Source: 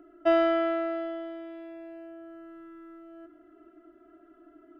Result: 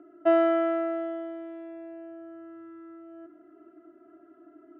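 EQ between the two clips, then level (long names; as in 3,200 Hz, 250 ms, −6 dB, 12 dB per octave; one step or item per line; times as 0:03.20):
high-pass filter 97 Hz 24 dB per octave
low-pass filter 2,200 Hz 6 dB per octave
high-frequency loss of the air 250 metres
+2.5 dB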